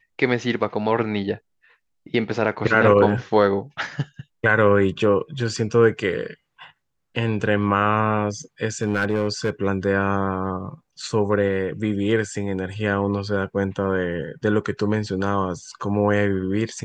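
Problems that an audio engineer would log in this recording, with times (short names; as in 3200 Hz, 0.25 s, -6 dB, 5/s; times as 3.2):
8.81–9.5 clipped -15.5 dBFS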